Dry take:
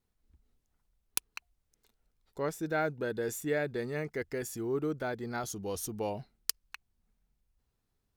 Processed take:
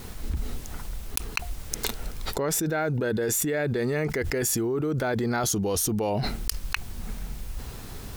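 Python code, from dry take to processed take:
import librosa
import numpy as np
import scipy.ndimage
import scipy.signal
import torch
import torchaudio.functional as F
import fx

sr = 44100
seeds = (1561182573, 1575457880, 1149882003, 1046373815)

y = fx.env_flatten(x, sr, amount_pct=100)
y = y * 10.0 ** (1.5 / 20.0)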